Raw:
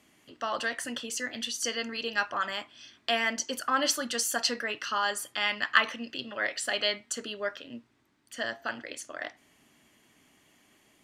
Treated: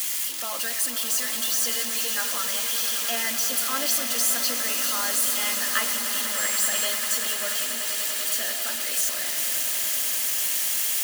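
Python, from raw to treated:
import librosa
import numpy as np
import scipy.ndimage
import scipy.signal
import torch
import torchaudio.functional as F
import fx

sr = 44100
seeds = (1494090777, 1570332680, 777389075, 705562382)

p1 = x + 0.5 * 10.0 ** (-14.5 / 20.0) * np.diff(np.sign(x), prepend=np.sign(x[:1]))
p2 = scipy.signal.sosfilt(scipy.signal.butter(4, 160.0, 'highpass', fs=sr, output='sos'), p1)
p3 = fx.notch_comb(p2, sr, f0_hz=380.0)
p4 = fx.dmg_tone(p3, sr, hz=7600.0, level_db=-24.0, at=(6.36, 6.84), fade=0.02)
p5 = p4 + fx.echo_swell(p4, sr, ms=97, loudest=8, wet_db=-13, dry=0)
y = p5 * librosa.db_to_amplitude(-3.5)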